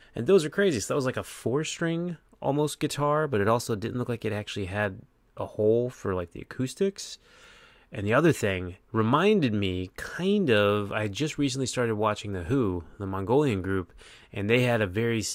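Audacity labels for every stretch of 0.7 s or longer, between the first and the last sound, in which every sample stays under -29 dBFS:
7.140000	7.950000	silence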